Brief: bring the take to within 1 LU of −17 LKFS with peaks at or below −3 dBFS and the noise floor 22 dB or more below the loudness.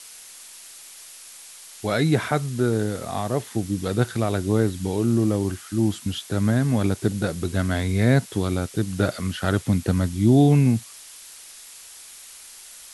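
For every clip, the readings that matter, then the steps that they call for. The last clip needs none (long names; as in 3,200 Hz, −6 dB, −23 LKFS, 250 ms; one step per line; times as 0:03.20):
background noise floor −44 dBFS; target noise floor −45 dBFS; integrated loudness −23.0 LKFS; sample peak −5.5 dBFS; target loudness −17.0 LKFS
→ broadband denoise 6 dB, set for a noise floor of −44 dBFS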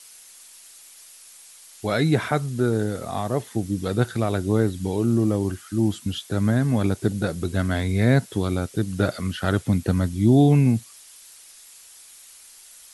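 background noise floor −48 dBFS; integrated loudness −23.0 LKFS; sample peak −6.0 dBFS; target loudness −17.0 LKFS
→ level +6 dB
brickwall limiter −3 dBFS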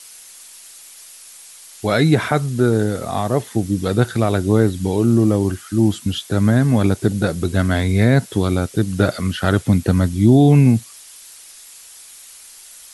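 integrated loudness −17.5 LKFS; sample peak −3.0 dBFS; background noise floor −42 dBFS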